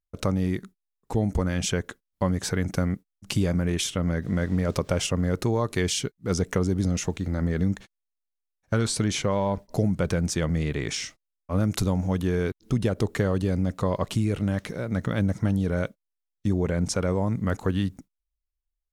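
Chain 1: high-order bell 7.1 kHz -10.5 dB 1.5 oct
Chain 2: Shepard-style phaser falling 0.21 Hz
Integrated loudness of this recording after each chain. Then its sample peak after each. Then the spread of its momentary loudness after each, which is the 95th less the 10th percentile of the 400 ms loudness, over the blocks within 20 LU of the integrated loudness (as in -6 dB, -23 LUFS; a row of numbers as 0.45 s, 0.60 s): -27.0 LUFS, -27.0 LUFS; -11.0 dBFS, -9.0 dBFS; 5 LU, 5 LU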